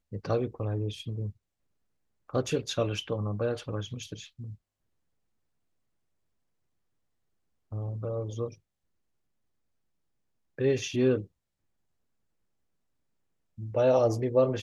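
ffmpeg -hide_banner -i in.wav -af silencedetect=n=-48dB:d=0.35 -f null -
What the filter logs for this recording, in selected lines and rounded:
silence_start: 1.31
silence_end: 2.29 | silence_duration: 0.98
silence_start: 4.55
silence_end: 7.72 | silence_duration: 3.17
silence_start: 8.55
silence_end: 10.59 | silence_duration: 2.04
silence_start: 11.26
silence_end: 13.58 | silence_duration: 2.32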